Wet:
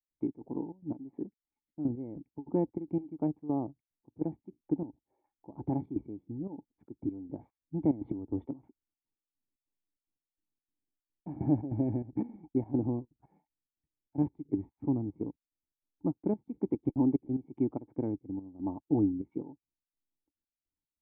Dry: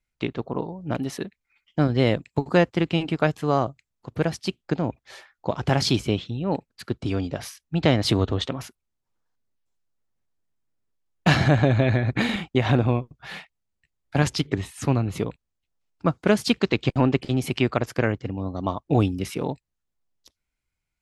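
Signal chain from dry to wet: cascade formant filter u; trance gate ".xx.xxx.x." 146 bpm -12 dB

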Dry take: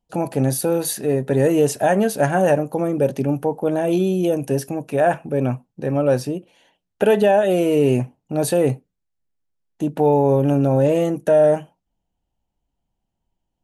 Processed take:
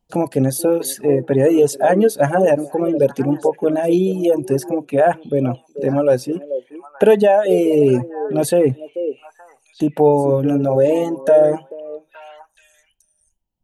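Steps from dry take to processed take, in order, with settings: repeats whose band climbs or falls 434 ms, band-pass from 420 Hz, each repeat 1.4 oct, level -7 dB; reverb removal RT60 2 s; in parallel at -1.5 dB: compression, threshold -43 dBFS, peak gain reduction 27.5 dB; on the sum: dynamic bell 380 Hz, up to +5 dB, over -33 dBFS, Q 0.72

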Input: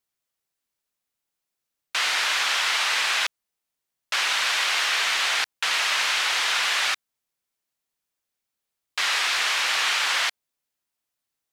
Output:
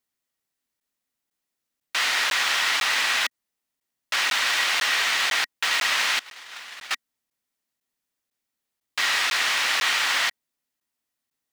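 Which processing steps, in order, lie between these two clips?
6.19–6.91 s: gate -20 dBFS, range -24 dB; short-mantissa float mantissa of 2-bit; small resonant body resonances 250/1900 Hz, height 7 dB, ringing for 35 ms; crackling interface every 0.50 s, samples 512, zero, from 0.80 s

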